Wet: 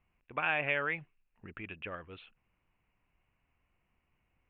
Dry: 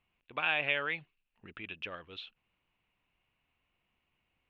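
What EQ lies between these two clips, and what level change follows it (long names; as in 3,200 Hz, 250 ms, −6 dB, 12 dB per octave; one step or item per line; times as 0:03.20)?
low-pass filter 2,400 Hz 24 dB per octave
low-shelf EQ 120 Hz +7.5 dB
+1.5 dB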